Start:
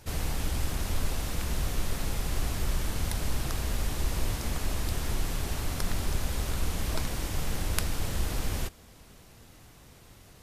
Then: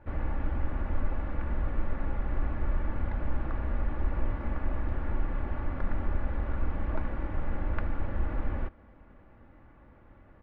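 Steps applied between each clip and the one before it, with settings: low-pass 1.8 kHz 24 dB/octave; comb 3.5 ms, depth 45%; trim -1.5 dB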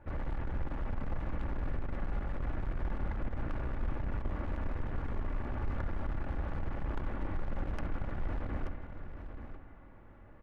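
overload inside the chain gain 30 dB; delay 882 ms -10 dB; reverberation RT60 2.6 s, pre-delay 47 ms, DRR 7.5 dB; trim -1.5 dB

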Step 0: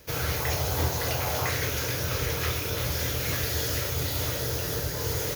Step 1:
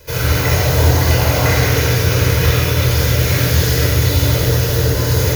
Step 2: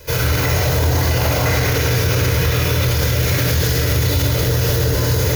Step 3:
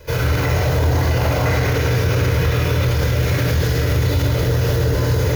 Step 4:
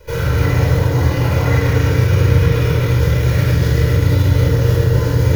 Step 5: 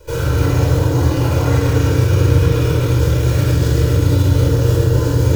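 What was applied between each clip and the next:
simulated room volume 3600 m³, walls mixed, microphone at 4.9 m; trim +5 dB
peak limiter -11 dBFS, peak gain reduction 9.5 dB; trim +3 dB
treble shelf 3.7 kHz -10.5 dB
simulated room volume 2200 m³, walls furnished, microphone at 4.6 m; trim -5 dB
graphic EQ with 31 bands 200 Hz -10 dB, 315 Hz +8 dB, 2 kHz -10 dB, 8 kHz +11 dB

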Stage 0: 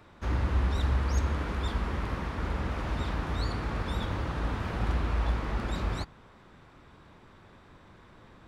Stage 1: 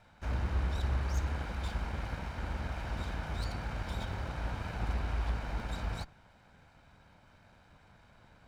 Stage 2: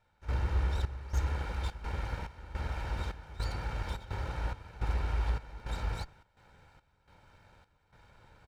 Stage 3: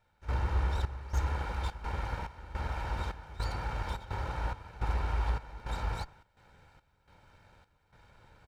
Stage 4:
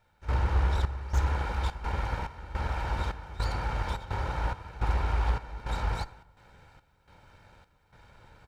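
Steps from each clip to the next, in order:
comb filter that takes the minimum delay 1.3 ms; band-stop 3.3 kHz, Q 23; trim -4.5 dB
comb 2.2 ms, depth 42%; trance gate "..xxxx..xxxx.xxx" 106 bpm -12 dB
dynamic bell 960 Hz, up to +5 dB, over -57 dBFS, Q 1.3
on a send at -19 dB: reverberation RT60 1.1 s, pre-delay 32 ms; on the sum: loudspeaker Doppler distortion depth 0.19 ms; trim +4 dB

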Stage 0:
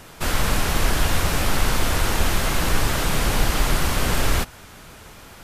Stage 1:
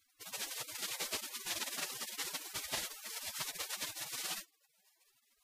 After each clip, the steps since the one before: bass shelf 73 Hz -12 dB; spectral gate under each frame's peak -25 dB weak; low-pass 1.9 kHz 6 dB/octave; trim +5.5 dB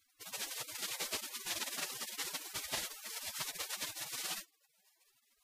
no audible change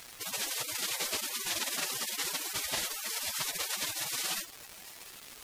crackle 380 per s -57 dBFS; level flattener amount 50%; trim +4 dB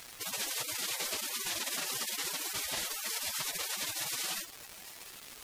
peak limiter -25 dBFS, peak gain reduction 5 dB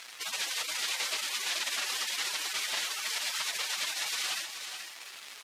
in parallel at -6 dB: one-sided clip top -37 dBFS; on the sum: band-pass filter 2.5 kHz, Q 0.54; delay 430 ms -8 dB; trim +2.5 dB

